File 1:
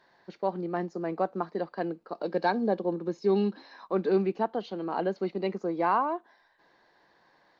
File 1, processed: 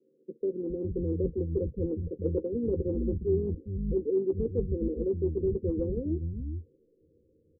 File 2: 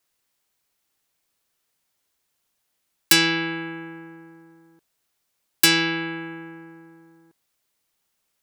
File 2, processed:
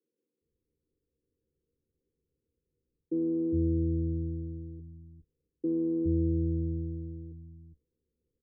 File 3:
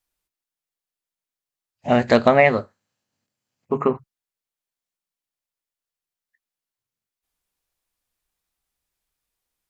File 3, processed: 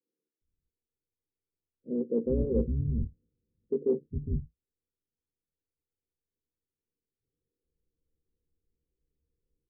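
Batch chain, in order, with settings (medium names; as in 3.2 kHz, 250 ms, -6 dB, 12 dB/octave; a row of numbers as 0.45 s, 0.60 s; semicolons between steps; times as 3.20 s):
octave divider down 2 oct, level -3 dB; Chebyshev low-pass 510 Hz, order 8; reverse; compression 6:1, threshold -31 dBFS; reverse; doubling 13 ms -8 dB; bands offset in time highs, lows 410 ms, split 220 Hz; trim +7 dB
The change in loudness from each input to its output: -1.0 LU, -11.5 LU, -13.0 LU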